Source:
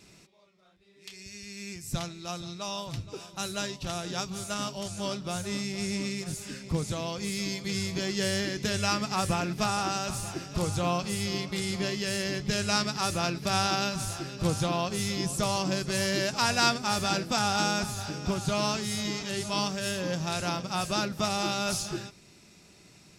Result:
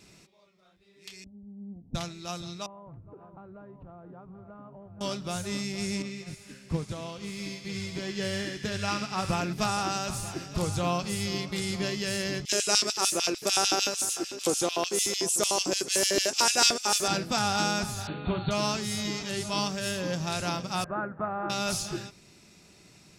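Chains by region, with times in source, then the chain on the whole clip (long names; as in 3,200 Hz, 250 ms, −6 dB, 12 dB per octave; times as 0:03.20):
0:01.24–0:01.95: Chebyshev low-pass with heavy ripple 910 Hz, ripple 6 dB + comb filter 4 ms, depth 68%
0:02.66–0:05.01: low-pass filter 1,200 Hz 24 dB per octave + downward compressor, threshold −44 dBFS
0:06.02–0:09.33: high-shelf EQ 4,900 Hz −9.5 dB + delay with a high-pass on its return 69 ms, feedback 74%, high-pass 1,800 Hz, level −4 dB + expander for the loud parts, over −41 dBFS
0:12.45–0:17.08: high shelf with overshoot 5,200 Hz +7 dB, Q 1.5 + auto-filter high-pass square 6.7 Hz 360–3,000 Hz
0:18.07–0:18.51: linear-phase brick-wall low-pass 4,500 Hz + double-tracking delay 38 ms −9 dB
0:20.84–0:21.50: elliptic low-pass filter 1,600 Hz, stop band 80 dB + spectral tilt +2 dB per octave
whole clip: no processing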